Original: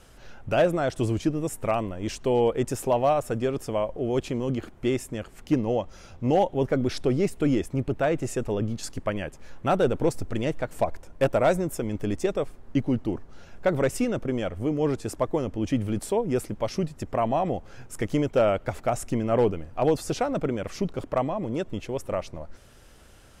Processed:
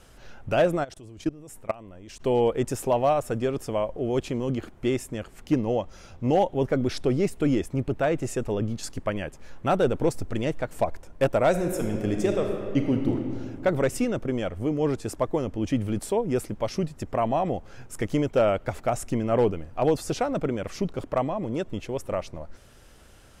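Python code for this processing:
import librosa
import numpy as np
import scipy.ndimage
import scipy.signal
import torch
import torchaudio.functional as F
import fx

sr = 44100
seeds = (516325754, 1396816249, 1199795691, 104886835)

y = fx.level_steps(x, sr, step_db=22, at=(0.83, 2.19), fade=0.02)
y = fx.reverb_throw(y, sr, start_s=11.49, length_s=1.66, rt60_s=2.4, drr_db=2.5)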